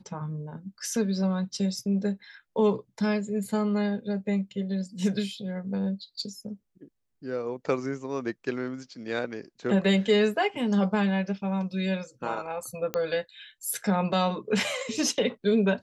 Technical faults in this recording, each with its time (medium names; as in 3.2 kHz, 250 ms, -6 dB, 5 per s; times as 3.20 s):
12.94 s: pop -13 dBFS